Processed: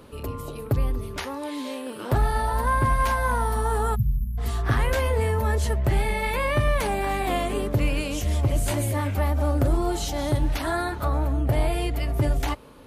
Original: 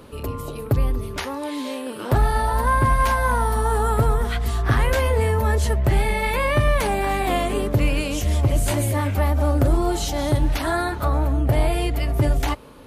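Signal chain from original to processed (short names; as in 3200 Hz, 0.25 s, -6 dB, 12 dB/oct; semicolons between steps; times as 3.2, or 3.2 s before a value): 3.95–4.38 spectral delete 220–11000 Hz; 1.76–4.16 crackle 160/s -46 dBFS; gain -3.5 dB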